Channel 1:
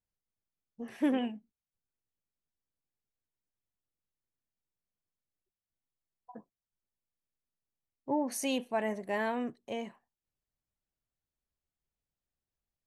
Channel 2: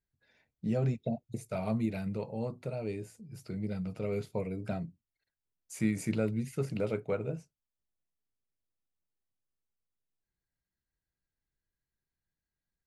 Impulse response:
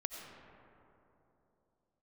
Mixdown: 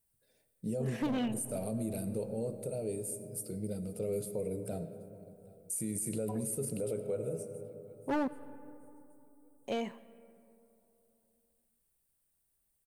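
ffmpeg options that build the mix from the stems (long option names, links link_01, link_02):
-filter_complex "[0:a]volume=30.5dB,asoftclip=hard,volume=-30.5dB,volume=3dB,asplit=3[link_01][link_02][link_03];[link_01]atrim=end=8.28,asetpts=PTS-STARTPTS,afade=type=out:start_time=8.276:duration=0.004:curve=hsin[link_04];[link_02]atrim=start=8.28:end=9.64,asetpts=PTS-STARTPTS,volume=0[link_05];[link_03]atrim=start=9.64,asetpts=PTS-STARTPTS,afade=type=in:duration=0.004:curve=hsin[link_06];[link_04][link_05][link_06]concat=n=3:v=0:a=1,asplit=2[link_07][link_08];[link_08]volume=-12.5dB[link_09];[1:a]equalizer=frequency=500:width_type=o:width=1:gain=9,equalizer=frequency=1000:width_type=o:width=1:gain=-8,equalizer=frequency=2000:width_type=o:width=1:gain=-9,equalizer=frequency=8000:width_type=o:width=1:gain=10,aexciter=amount=11.2:drive=2.4:freq=9800,equalizer=frequency=8600:width_type=o:width=0.21:gain=12,volume=-7.5dB,asplit=3[link_10][link_11][link_12];[link_11]volume=-3dB[link_13];[link_12]volume=-23.5dB[link_14];[2:a]atrim=start_sample=2205[link_15];[link_09][link_13]amix=inputs=2:normalize=0[link_16];[link_16][link_15]afir=irnorm=-1:irlink=0[link_17];[link_14]aecho=0:1:778|1556|2334|3112|3890|4668:1|0.4|0.16|0.064|0.0256|0.0102[link_18];[link_07][link_10][link_17][link_18]amix=inputs=4:normalize=0,alimiter=level_in=3dB:limit=-24dB:level=0:latency=1:release=35,volume=-3dB"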